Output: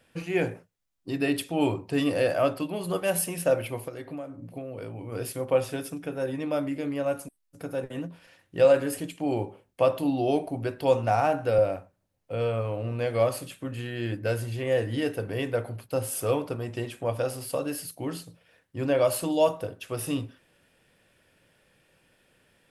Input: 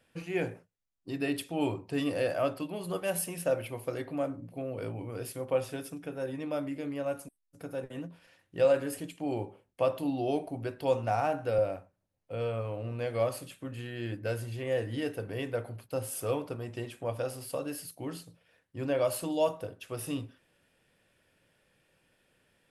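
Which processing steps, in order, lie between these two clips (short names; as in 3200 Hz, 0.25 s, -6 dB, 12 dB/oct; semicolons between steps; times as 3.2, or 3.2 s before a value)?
3.85–5.12 compressor 16:1, threshold -39 dBFS, peak gain reduction 13 dB; gain +5.5 dB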